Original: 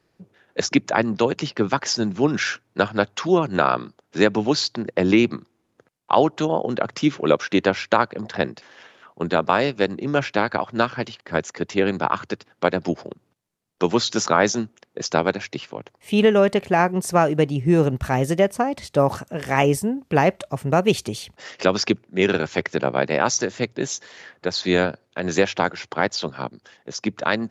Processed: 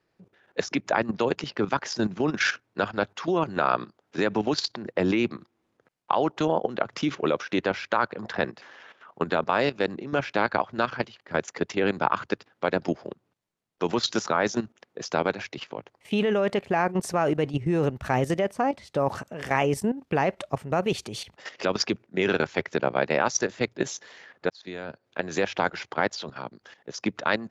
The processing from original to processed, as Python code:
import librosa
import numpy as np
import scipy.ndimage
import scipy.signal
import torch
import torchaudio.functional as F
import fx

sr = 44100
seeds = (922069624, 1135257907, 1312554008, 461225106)

y = fx.peak_eq(x, sr, hz=1300.0, db=3.5, octaves=1.3, at=(7.89, 9.34))
y = fx.edit(y, sr, fx.fade_in_span(start_s=24.5, length_s=0.74), tone=tone)
y = fx.lowpass(y, sr, hz=4000.0, slope=6)
y = fx.low_shelf(y, sr, hz=400.0, db=-5.0)
y = fx.level_steps(y, sr, step_db=13)
y = y * 10.0 ** (3.5 / 20.0)